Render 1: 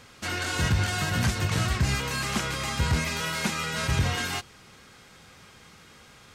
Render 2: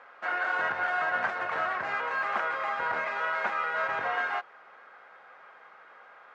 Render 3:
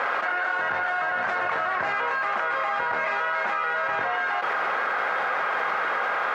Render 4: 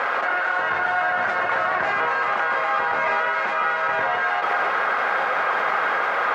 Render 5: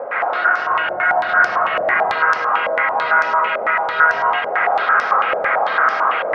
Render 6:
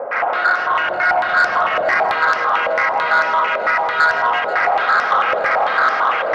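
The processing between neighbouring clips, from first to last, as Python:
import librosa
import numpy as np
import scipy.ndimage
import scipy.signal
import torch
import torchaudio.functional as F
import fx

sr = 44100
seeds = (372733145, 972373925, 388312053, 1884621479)

y1 = scipy.signal.sosfilt(scipy.signal.cheby1(2, 1.0, [620.0, 1600.0], 'bandpass', fs=sr, output='sos'), x)
y1 = y1 * librosa.db_to_amplitude(5.0)
y2 = fx.env_flatten(y1, sr, amount_pct=100)
y3 = fx.echo_alternate(y2, sr, ms=157, hz=1200.0, feedback_pct=69, wet_db=-4)
y3 = y3 * librosa.db_to_amplitude(2.5)
y4 = fx.rev_freeverb(y3, sr, rt60_s=1.1, hf_ratio=0.45, predelay_ms=85, drr_db=-3.5)
y4 = fx.filter_held_lowpass(y4, sr, hz=9.0, low_hz=580.0, high_hz=5400.0)
y4 = y4 * librosa.db_to_amplitude(-5.0)
y5 = 10.0 ** (-8.5 / 20.0) * np.tanh(y4 / 10.0 ** (-8.5 / 20.0))
y5 = fx.echo_heads(y5, sr, ms=161, heads='first and third', feedback_pct=49, wet_db=-16.5)
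y5 = y5 * librosa.db_to_amplitude(1.5)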